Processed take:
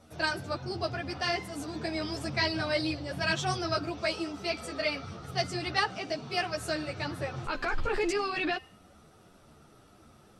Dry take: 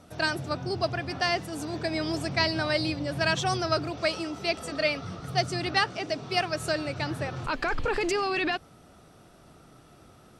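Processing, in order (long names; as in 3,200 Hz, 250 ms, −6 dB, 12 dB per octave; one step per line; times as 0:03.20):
hum removal 259.1 Hz, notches 21
string-ensemble chorus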